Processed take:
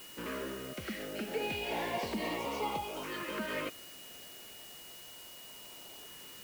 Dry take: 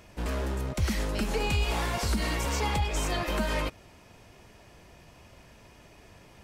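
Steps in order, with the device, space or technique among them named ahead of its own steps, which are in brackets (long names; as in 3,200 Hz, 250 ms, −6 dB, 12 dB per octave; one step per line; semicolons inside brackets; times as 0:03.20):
shortwave radio (band-pass filter 270–2,600 Hz; amplitude tremolo 0.49 Hz, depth 39%; auto-filter notch saw up 0.33 Hz 680–1,900 Hz; steady tone 2,900 Hz −53 dBFS; white noise bed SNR 12 dB)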